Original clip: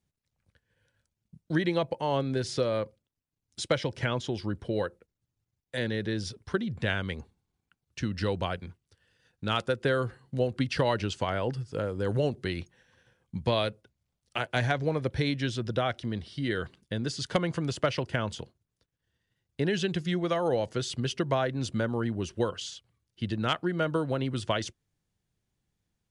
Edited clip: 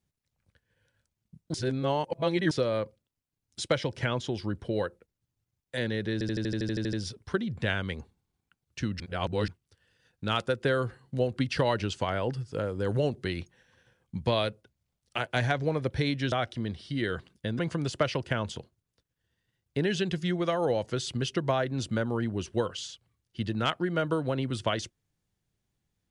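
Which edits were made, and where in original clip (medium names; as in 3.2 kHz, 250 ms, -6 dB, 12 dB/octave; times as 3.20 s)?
1.54–2.51 s: reverse
6.13 s: stutter 0.08 s, 11 plays
8.20–8.68 s: reverse
15.52–15.79 s: delete
17.06–17.42 s: delete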